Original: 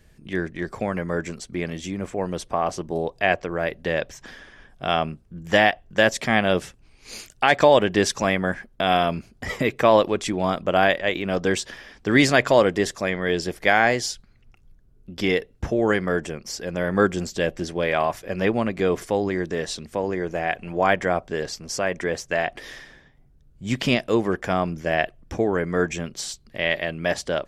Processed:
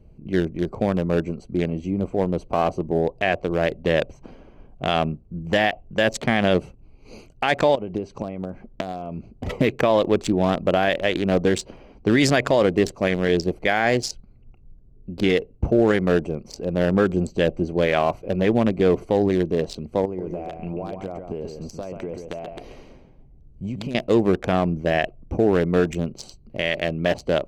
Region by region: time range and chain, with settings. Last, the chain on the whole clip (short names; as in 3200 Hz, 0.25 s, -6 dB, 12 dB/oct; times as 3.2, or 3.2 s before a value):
7.75–9.32 LPF 6800 Hz + compressor 3:1, threshold -35 dBFS + transient shaper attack +7 dB, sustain +2 dB
20.05–23.95 high shelf 3400 Hz +6 dB + compressor 12:1, threshold -29 dBFS + echo 0.136 s -6 dB
whole clip: Wiener smoothing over 25 samples; bell 1200 Hz -4 dB 1.4 oct; limiter -13.5 dBFS; gain +6 dB